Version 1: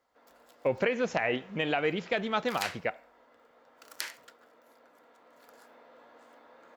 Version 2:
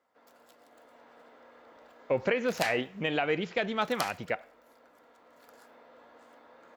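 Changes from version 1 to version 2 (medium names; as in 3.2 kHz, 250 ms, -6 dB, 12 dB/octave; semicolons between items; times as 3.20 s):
speech: entry +1.45 s; background: add bass shelf 89 Hz +9 dB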